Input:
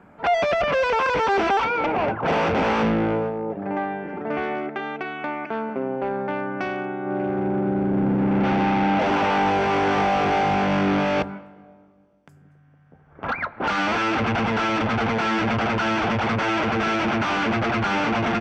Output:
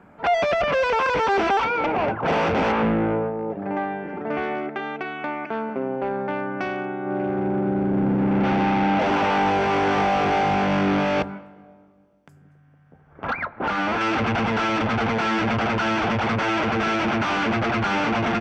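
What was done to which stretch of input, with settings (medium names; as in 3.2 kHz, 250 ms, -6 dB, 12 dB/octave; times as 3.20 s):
2.71–3.37 s: low-pass 2.9 kHz -> 1.9 kHz
13.43–14.01 s: treble shelf 3.4 kHz -9.5 dB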